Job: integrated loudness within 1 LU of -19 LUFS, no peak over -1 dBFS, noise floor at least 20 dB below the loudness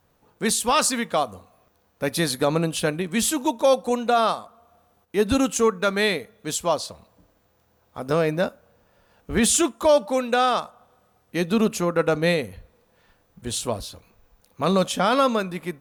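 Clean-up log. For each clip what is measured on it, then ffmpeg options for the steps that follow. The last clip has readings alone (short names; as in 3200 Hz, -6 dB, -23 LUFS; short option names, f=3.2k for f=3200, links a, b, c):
loudness -22.5 LUFS; peak -8.0 dBFS; loudness target -19.0 LUFS
-> -af "volume=3.5dB"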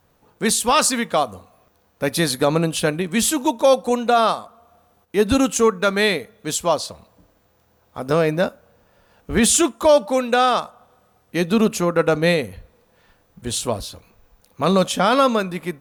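loudness -19.0 LUFS; peak -4.5 dBFS; noise floor -61 dBFS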